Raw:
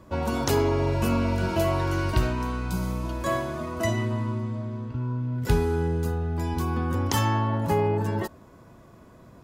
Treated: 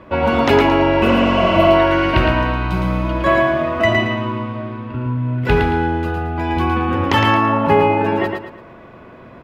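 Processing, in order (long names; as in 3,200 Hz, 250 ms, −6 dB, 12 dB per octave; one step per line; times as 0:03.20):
drawn EQ curve 110 Hz 0 dB, 580 Hz +8 dB, 1,100 Hz +7 dB, 2,600 Hz +12 dB, 7,000 Hz −14 dB
repeating echo 112 ms, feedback 34%, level −4.5 dB
healed spectral selection 0:01.08–0:01.65, 390–8,200 Hz both
level +4 dB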